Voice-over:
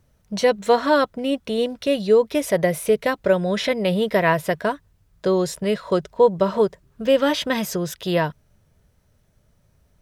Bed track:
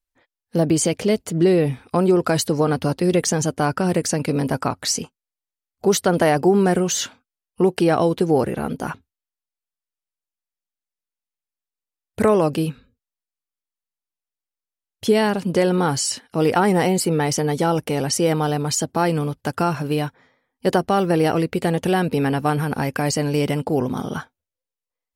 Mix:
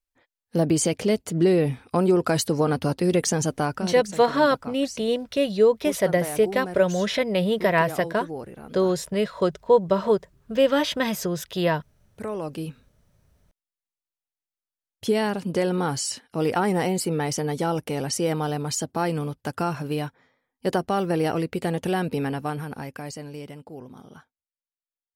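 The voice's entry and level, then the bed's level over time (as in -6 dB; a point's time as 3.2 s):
3.50 s, -2.0 dB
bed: 3.57 s -3 dB
4.13 s -16.5 dB
12.2 s -16.5 dB
12.91 s -5.5 dB
22.13 s -5.5 dB
23.64 s -19.5 dB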